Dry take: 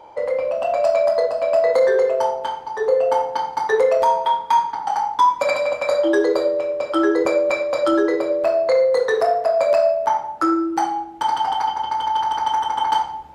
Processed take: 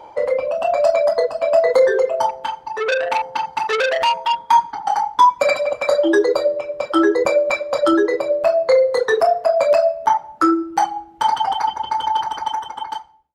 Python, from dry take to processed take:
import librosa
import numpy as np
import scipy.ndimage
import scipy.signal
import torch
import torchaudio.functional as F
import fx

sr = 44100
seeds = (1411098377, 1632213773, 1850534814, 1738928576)

y = fx.fade_out_tail(x, sr, length_s=1.24)
y = fx.dereverb_blind(y, sr, rt60_s=1.2)
y = fx.transformer_sat(y, sr, knee_hz=2300.0, at=(2.29, 4.38))
y = F.gain(torch.from_numpy(y), 4.0).numpy()